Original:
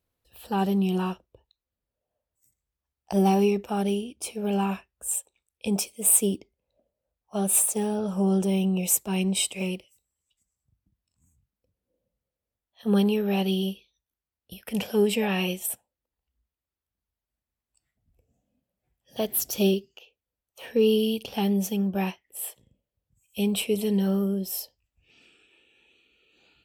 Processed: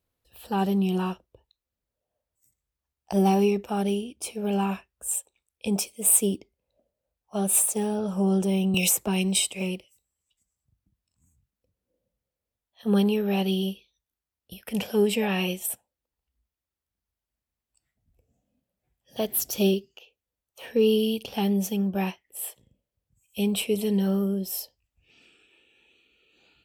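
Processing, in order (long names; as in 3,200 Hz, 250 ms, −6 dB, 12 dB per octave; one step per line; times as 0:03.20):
0:08.74–0:09.40: multiband upward and downward compressor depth 100%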